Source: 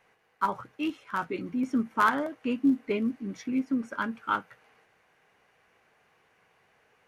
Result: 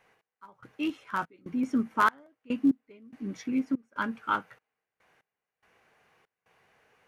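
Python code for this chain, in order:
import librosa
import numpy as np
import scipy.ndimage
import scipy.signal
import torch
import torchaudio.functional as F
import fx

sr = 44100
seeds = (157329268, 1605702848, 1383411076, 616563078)

y = fx.step_gate(x, sr, bpm=72, pattern='x..xxx.xxx..', floor_db=-24.0, edge_ms=4.5)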